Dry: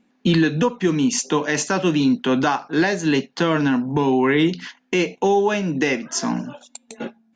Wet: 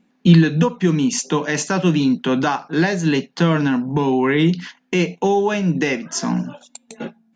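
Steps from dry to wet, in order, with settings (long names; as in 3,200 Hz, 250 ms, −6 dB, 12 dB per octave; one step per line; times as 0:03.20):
parametric band 170 Hz +11 dB 0.24 octaves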